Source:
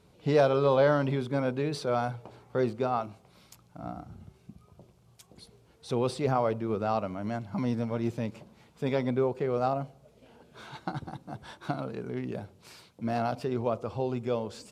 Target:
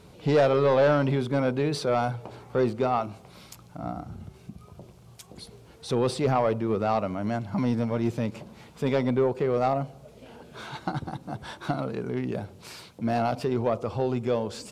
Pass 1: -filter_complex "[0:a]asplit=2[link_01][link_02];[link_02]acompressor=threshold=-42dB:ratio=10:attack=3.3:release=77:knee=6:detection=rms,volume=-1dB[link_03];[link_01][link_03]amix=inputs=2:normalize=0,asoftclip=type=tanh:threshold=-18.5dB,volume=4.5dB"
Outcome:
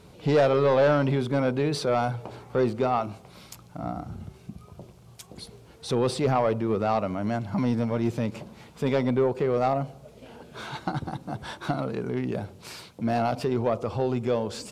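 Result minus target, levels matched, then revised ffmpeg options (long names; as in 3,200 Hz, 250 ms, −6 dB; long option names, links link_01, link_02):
downward compressor: peak gain reduction −8.5 dB
-filter_complex "[0:a]asplit=2[link_01][link_02];[link_02]acompressor=threshold=-51.5dB:ratio=10:attack=3.3:release=77:knee=6:detection=rms,volume=-1dB[link_03];[link_01][link_03]amix=inputs=2:normalize=0,asoftclip=type=tanh:threshold=-18.5dB,volume=4.5dB"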